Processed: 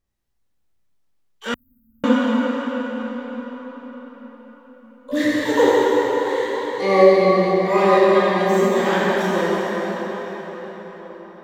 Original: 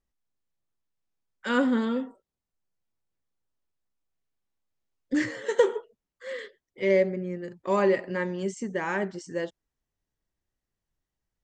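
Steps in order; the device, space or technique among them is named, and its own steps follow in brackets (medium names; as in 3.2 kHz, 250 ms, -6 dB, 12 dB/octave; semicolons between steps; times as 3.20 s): shimmer-style reverb (harmony voices +12 st -8 dB; reverberation RT60 5.7 s, pre-delay 23 ms, DRR -8 dB); 1.54–2.04 s: inverse Chebyshev band-stop 350–6200 Hz, stop band 70 dB; trim +1.5 dB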